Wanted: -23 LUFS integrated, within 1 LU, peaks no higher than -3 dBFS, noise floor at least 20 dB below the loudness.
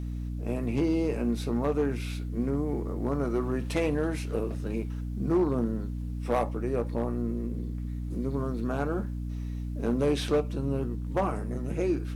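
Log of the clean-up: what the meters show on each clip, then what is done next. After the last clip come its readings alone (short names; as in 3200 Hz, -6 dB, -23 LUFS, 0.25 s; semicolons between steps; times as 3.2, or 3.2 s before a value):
clipped 0.5%; flat tops at -19.0 dBFS; hum 60 Hz; harmonics up to 300 Hz; hum level -31 dBFS; loudness -30.5 LUFS; peak -19.0 dBFS; loudness target -23.0 LUFS
-> clip repair -19 dBFS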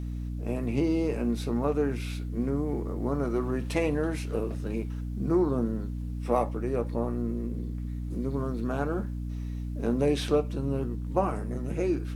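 clipped 0.0%; hum 60 Hz; harmonics up to 300 Hz; hum level -31 dBFS
-> de-hum 60 Hz, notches 5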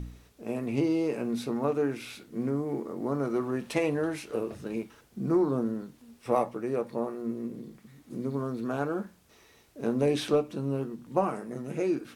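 hum none; loudness -31.0 LUFS; peak -11.5 dBFS; loudness target -23.0 LUFS
-> gain +8 dB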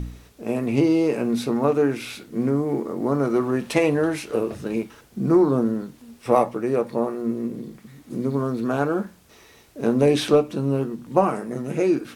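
loudness -23.0 LUFS; peak -3.5 dBFS; noise floor -52 dBFS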